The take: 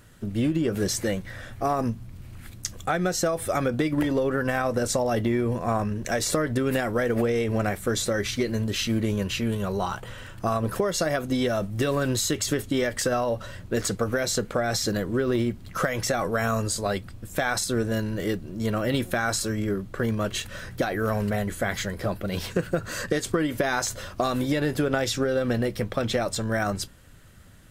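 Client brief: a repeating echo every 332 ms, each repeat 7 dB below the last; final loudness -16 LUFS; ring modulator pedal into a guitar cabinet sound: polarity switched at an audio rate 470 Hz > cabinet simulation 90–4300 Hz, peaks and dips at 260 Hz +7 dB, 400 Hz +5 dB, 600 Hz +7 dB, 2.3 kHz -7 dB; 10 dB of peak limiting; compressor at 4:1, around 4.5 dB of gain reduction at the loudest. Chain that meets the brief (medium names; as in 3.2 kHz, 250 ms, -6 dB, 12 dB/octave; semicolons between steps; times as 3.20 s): compression 4:1, threshold -26 dBFS; peak limiter -22 dBFS; feedback delay 332 ms, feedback 45%, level -7 dB; polarity switched at an audio rate 470 Hz; cabinet simulation 90–4300 Hz, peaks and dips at 260 Hz +7 dB, 400 Hz +5 dB, 600 Hz +7 dB, 2.3 kHz -7 dB; trim +13 dB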